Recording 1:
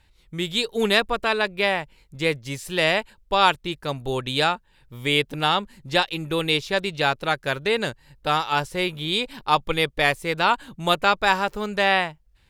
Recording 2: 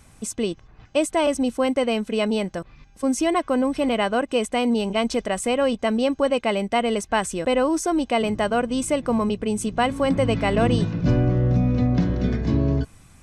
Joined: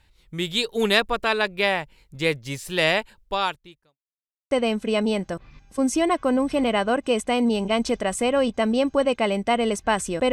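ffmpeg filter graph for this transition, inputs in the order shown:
-filter_complex "[0:a]apad=whole_dur=10.32,atrim=end=10.32,asplit=2[a][b];[a]atrim=end=3.98,asetpts=PTS-STARTPTS,afade=t=out:st=3.17:d=0.81:c=qua[c];[b]atrim=start=3.98:end=4.51,asetpts=PTS-STARTPTS,volume=0[d];[1:a]atrim=start=1.76:end=7.57,asetpts=PTS-STARTPTS,afade=t=in:d=0.004:c=hsin[e];[c][d][e]concat=n=3:v=0:a=1"

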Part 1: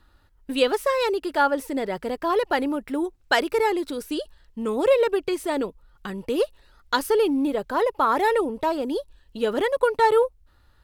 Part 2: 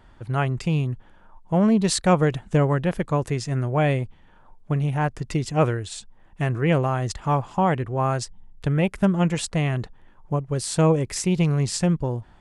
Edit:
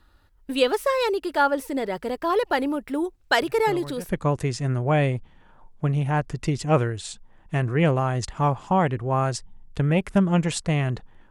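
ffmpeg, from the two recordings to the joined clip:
-filter_complex "[1:a]asplit=2[a][b];[0:a]apad=whole_dur=11.3,atrim=end=11.3,atrim=end=4.092[c];[b]atrim=start=2.958:end=10.17[d];[a]atrim=start=2.29:end=2.96,asetpts=PTS-STARTPTS,volume=-16dB,afade=t=in:d=0.004:c=hsin,afade=t=out:st=0.666:d=0.004:c=hsin,adelay=3420[e];[c][d]acrossfade=d=0.004:c1=hsin:c2=hsin[f];[f][e]amix=inputs=2:normalize=0"

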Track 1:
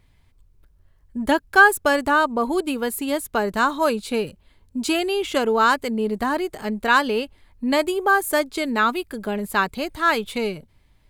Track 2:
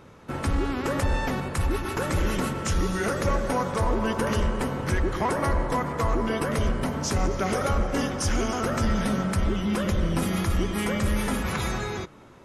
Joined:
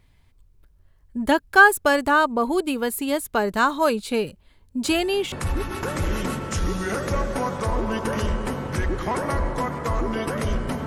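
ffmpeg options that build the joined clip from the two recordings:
-filter_complex "[1:a]asplit=2[a][b];[0:a]apad=whole_dur=10.86,atrim=end=10.86,atrim=end=5.322[c];[b]atrim=start=1.458:end=7[d];[a]atrim=start=0.98:end=1.46,asetpts=PTS-STARTPTS,volume=-15.5dB,afade=t=in:d=0.004:c=hsin,afade=t=out:st=0.476:d=0.004:c=hsin,adelay=4840[e];[c][d]acrossfade=d=0.004:c1=hsin:c2=hsin[f];[f][e]amix=inputs=2:normalize=0"

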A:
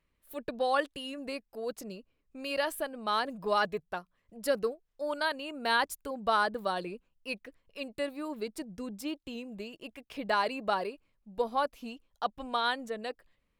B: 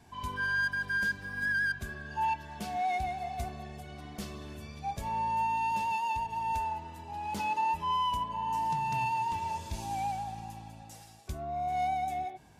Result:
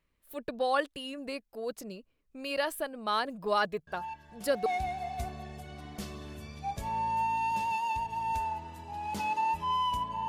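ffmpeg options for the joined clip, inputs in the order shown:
-filter_complex "[1:a]asplit=2[a][b];[0:a]apad=whole_dur=10.28,atrim=end=10.28,atrim=end=4.662[c];[b]atrim=start=2.858:end=8.48[d];[a]atrim=start=2.07:end=2.86,asetpts=PTS-STARTPTS,volume=-10.5dB,afade=t=in:d=0.004:c=hsin,afade=t=out:st=0.786:d=0.004:c=hsin,adelay=3870[e];[c][d]acrossfade=d=0.004:c1=hsin:c2=hsin[f];[f][e]amix=inputs=2:normalize=0"

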